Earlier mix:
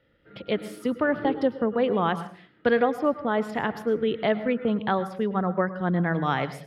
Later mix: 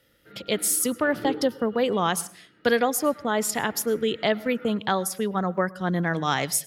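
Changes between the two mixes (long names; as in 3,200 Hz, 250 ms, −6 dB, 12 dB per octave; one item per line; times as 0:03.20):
speech: send −9.0 dB
master: remove high-frequency loss of the air 400 metres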